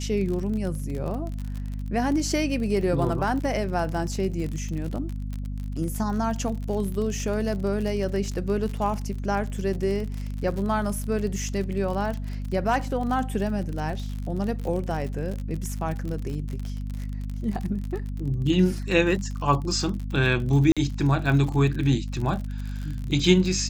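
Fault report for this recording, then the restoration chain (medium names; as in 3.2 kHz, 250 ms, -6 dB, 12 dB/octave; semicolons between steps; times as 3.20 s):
crackle 47 per s -30 dBFS
hum 50 Hz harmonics 5 -31 dBFS
20.72–20.77 s: dropout 46 ms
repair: de-click; de-hum 50 Hz, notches 5; interpolate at 20.72 s, 46 ms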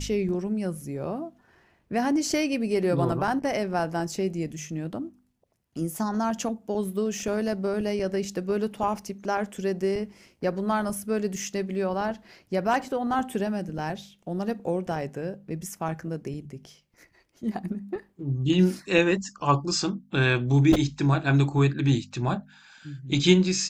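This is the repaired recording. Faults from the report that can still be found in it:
nothing left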